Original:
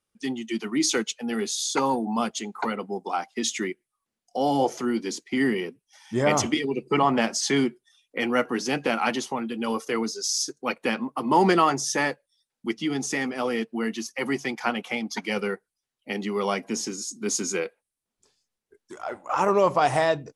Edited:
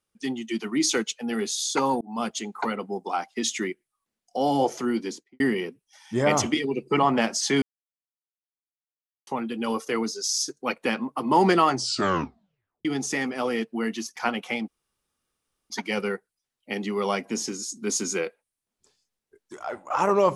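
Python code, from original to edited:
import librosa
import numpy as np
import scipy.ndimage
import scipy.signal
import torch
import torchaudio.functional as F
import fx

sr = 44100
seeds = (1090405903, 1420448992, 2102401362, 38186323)

y = fx.studio_fade_out(x, sr, start_s=5.0, length_s=0.4)
y = fx.edit(y, sr, fx.fade_in_span(start_s=2.01, length_s=0.28),
    fx.silence(start_s=7.62, length_s=1.65),
    fx.tape_stop(start_s=11.7, length_s=1.15),
    fx.cut(start_s=14.16, length_s=0.41),
    fx.insert_room_tone(at_s=15.09, length_s=1.02), tone=tone)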